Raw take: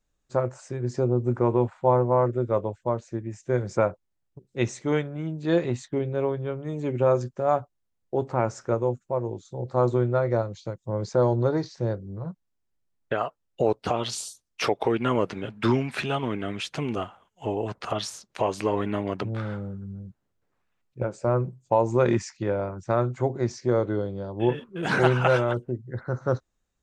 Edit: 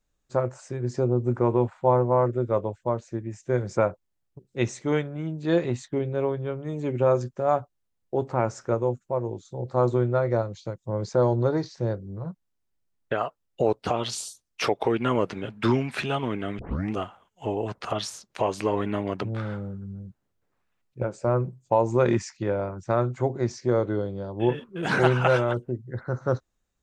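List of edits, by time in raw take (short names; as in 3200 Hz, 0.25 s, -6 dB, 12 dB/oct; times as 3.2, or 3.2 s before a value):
16.59 tape start 0.34 s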